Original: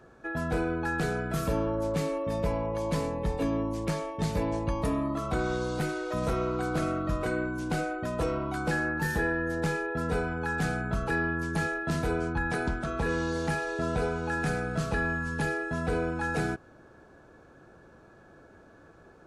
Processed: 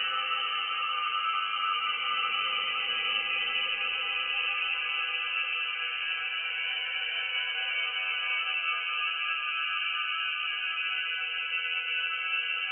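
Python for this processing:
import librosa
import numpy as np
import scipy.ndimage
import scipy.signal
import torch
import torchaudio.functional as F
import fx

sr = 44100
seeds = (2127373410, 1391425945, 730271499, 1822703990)

y = fx.spec_ripple(x, sr, per_octave=0.68, drift_hz=-1.6, depth_db=23)
y = fx.stretch_vocoder(y, sr, factor=0.66)
y = fx.granulator(y, sr, seeds[0], grain_ms=100.0, per_s=20.0, spray_ms=877.0, spread_st=0)
y = fx.freq_invert(y, sr, carrier_hz=3000)
y = fx.paulstretch(y, sr, seeds[1], factor=9.3, window_s=0.5, from_s=5.69)
y = y * 10.0 ** (-4.5 / 20.0)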